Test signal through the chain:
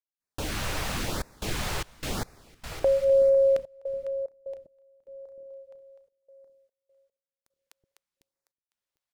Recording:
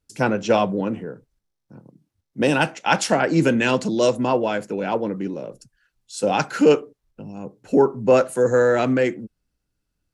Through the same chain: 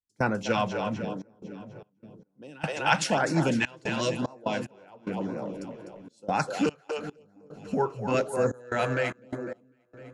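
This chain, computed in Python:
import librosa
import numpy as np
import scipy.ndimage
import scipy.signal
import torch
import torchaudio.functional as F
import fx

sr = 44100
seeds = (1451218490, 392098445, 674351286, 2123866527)

y = fx.high_shelf(x, sr, hz=8900.0, db=-10.0)
y = fx.echo_split(y, sr, split_hz=400.0, low_ms=373, high_ms=251, feedback_pct=52, wet_db=-8.5)
y = fx.step_gate(y, sr, bpm=74, pattern='.xxxxx.xx.x.', floor_db=-24.0, edge_ms=4.5)
y = fx.filter_lfo_notch(y, sr, shape='sine', hz=0.98, low_hz=220.0, high_hz=3200.0, q=1.4)
y = fx.dynamic_eq(y, sr, hz=380.0, q=0.83, threshold_db=-30.0, ratio=4.0, max_db=-7)
y = y * librosa.db_to_amplitude(-2.5)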